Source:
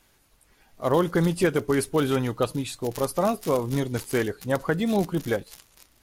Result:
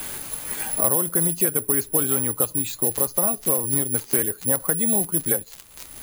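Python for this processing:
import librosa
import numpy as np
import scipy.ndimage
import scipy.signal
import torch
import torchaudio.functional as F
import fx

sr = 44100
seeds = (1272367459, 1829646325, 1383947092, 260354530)

y = (np.kron(scipy.signal.resample_poly(x, 1, 4), np.eye(4)[0]) * 4)[:len(x)]
y = fx.band_squash(y, sr, depth_pct=100)
y = F.gain(torch.from_numpy(y), -4.5).numpy()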